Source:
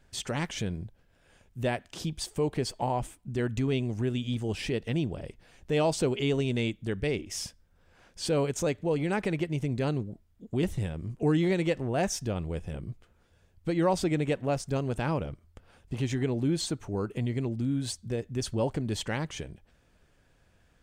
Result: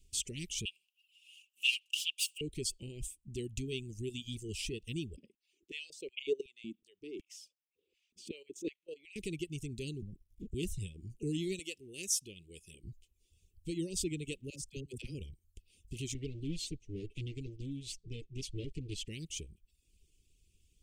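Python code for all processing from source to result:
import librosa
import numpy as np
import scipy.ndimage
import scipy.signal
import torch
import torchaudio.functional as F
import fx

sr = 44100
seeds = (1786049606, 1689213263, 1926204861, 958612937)

y = fx.chain(x, sr, fx.lower_of_two(delay_ms=5.0),
    fx.highpass_res(hz=2800.0, q=14.0), at=(0.65, 2.41))
y = fx.chain(y, sr, fx.peak_eq(hz=10000.0, db=-14.5, octaves=1.8),
    fx.level_steps(step_db=13),
    fx.filter_held_highpass(hz=5.4, low_hz=230.0, high_hz=2300.0), at=(5.16, 9.16))
y = fx.chain(y, sr, fx.leveller(passes=2),
    fx.high_shelf(hz=3200.0, db=-11.5),
    fx.band_squash(depth_pct=100), at=(10.02, 10.54))
y = fx.chain(y, sr, fx.highpass(hz=580.0, slope=6),
    fx.peak_eq(hz=11000.0, db=9.0, octaves=0.22), at=(11.59, 12.84))
y = fx.chain(y, sr, fx.level_steps(step_db=15),
    fx.dispersion(late='lows', ms=57.0, hz=440.0), at=(14.5, 15.15))
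y = fx.chain(y, sr, fx.lower_of_two(delay_ms=6.9),
    fx.lowpass(hz=4700.0, slope=12), at=(16.14, 19.08))
y = scipy.signal.sosfilt(scipy.signal.ellip(3, 1.0, 40, [400.0, 2700.0], 'bandstop', fs=sr, output='sos'), y)
y = fx.dereverb_blind(y, sr, rt60_s=0.65)
y = fx.graphic_eq(y, sr, hz=(125, 250, 500, 1000, 4000, 8000), db=(-9, -9, -5, -10, -4, 5))
y = F.gain(torch.from_numpy(y), 1.0).numpy()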